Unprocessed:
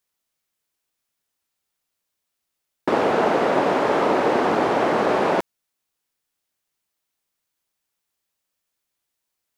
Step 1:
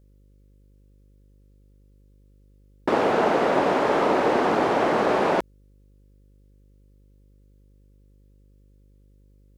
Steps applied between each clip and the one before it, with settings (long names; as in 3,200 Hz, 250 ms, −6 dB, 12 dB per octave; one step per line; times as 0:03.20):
hum with harmonics 50 Hz, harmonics 11, −54 dBFS −7 dB per octave
level −1.5 dB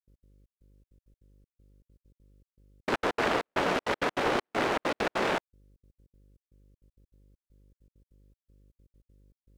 phase distortion by the signal itself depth 0.57 ms
gate pattern ".x.xxx..xxx.x" 198 BPM −60 dB
level −4.5 dB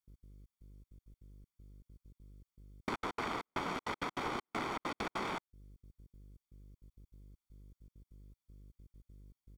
parametric band 2,600 Hz −3 dB 0.28 octaves
comb filter 0.9 ms, depth 53%
downward compressor 5 to 1, threshold −37 dBFS, peak gain reduction 13 dB
level +1 dB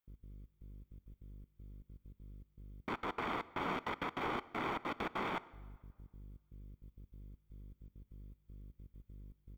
flat-topped bell 6,900 Hz −10.5 dB
brickwall limiter −31.5 dBFS, peak gain reduction 8.5 dB
dense smooth reverb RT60 1.7 s, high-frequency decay 0.7×, DRR 18 dB
level +3.5 dB